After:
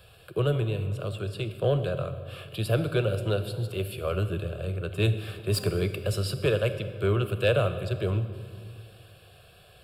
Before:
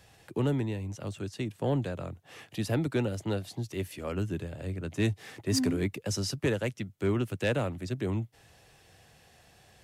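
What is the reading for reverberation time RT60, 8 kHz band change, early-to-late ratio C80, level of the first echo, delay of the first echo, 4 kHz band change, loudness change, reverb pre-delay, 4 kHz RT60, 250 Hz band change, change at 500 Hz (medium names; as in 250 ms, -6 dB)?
2.0 s, -3.0 dB, 11.5 dB, no echo, no echo, +3.5 dB, +3.5 dB, 27 ms, 1.4 s, -2.5 dB, +6.0 dB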